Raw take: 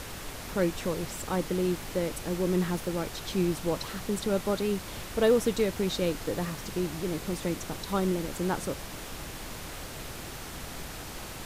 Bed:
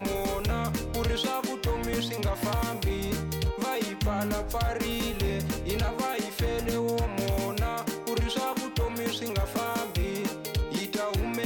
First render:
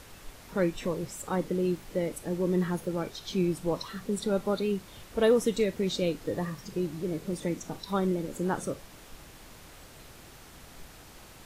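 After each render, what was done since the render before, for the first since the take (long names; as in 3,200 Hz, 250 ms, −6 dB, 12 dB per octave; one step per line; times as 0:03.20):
noise reduction from a noise print 10 dB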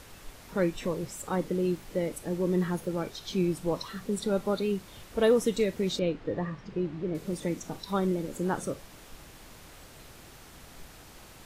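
0:05.99–0:07.15: low-pass filter 2,800 Hz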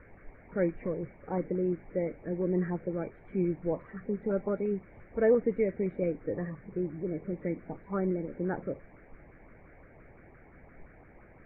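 auto-filter notch saw up 5.8 Hz 720–1,700 Hz
Chebyshev low-pass with heavy ripple 2,300 Hz, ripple 3 dB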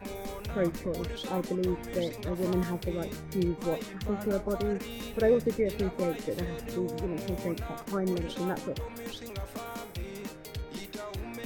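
mix in bed −9.5 dB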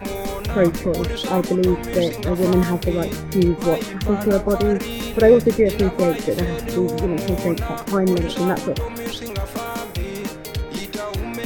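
level +12 dB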